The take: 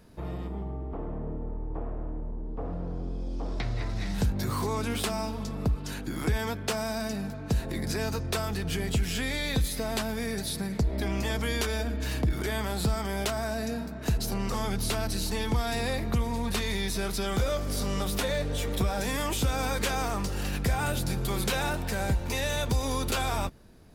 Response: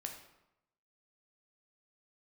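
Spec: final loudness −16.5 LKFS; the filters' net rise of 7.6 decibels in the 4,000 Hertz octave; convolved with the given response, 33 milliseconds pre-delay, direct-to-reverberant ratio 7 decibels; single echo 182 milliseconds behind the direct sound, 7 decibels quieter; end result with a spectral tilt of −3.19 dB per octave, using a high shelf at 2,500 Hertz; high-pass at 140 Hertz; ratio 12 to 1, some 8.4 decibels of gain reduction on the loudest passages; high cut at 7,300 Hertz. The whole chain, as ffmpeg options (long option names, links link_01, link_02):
-filter_complex "[0:a]highpass=140,lowpass=7300,highshelf=frequency=2500:gain=6.5,equalizer=frequency=4000:width_type=o:gain=4,acompressor=threshold=-31dB:ratio=12,aecho=1:1:182:0.447,asplit=2[link_01][link_02];[1:a]atrim=start_sample=2205,adelay=33[link_03];[link_02][link_03]afir=irnorm=-1:irlink=0,volume=-5dB[link_04];[link_01][link_04]amix=inputs=2:normalize=0,volume=17dB"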